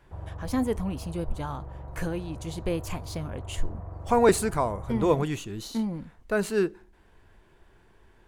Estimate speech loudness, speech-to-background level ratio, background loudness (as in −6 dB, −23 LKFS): −28.5 LKFS, 12.5 dB, −41.0 LKFS